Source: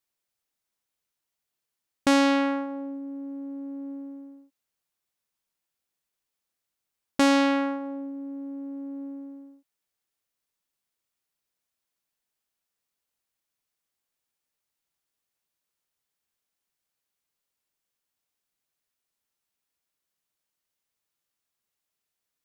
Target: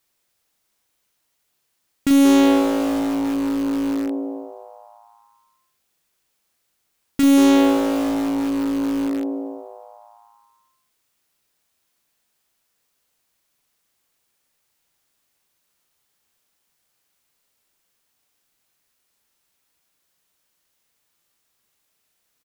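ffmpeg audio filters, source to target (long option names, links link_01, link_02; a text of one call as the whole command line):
ffmpeg -i in.wav -filter_complex "[0:a]aeval=exprs='0.282*(cos(1*acos(clip(val(0)/0.282,-1,1)))-cos(1*PI/2))+0.126*(cos(5*acos(clip(val(0)/0.282,-1,1)))-cos(5*PI/2))+0.00631*(cos(8*acos(clip(val(0)/0.282,-1,1)))-cos(8*PI/2))':channel_layout=same,asplit=2[link_01][link_02];[link_02]adelay=40,volume=-7.5dB[link_03];[link_01][link_03]amix=inputs=2:normalize=0,asplit=8[link_04][link_05][link_06][link_07][link_08][link_09][link_10][link_11];[link_05]adelay=182,afreqshift=110,volume=-13dB[link_12];[link_06]adelay=364,afreqshift=220,volume=-17.4dB[link_13];[link_07]adelay=546,afreqshift=330,volume=-21.9dB[link_14];[link_08]adelay=728,afreqshift=440,volume=-26.3dB[link_15];[link_09]adelay=910,afreqshift=550,volume=-30.7dB[link_16];[link_10]adelay=1092,afreqshift=660,volume=-35.2dB[link_17];[link_11]adelay=1274,afreqshift=770,volume=-39.6dB[link_18];[link_04][link_12][link_13][link_14][link_15][link_16][link_17][link_18]amix=inputs=8:normalize=0,asplit=2[link_19][link_20];[link_20]aeval=exprs='(mod(8.91*val(0)+1,2)-1)/8.91':channel_layout=same,volume=-11dB[link_21];[link_19][link_21]amix=inputs=2:normalize=0" out.wav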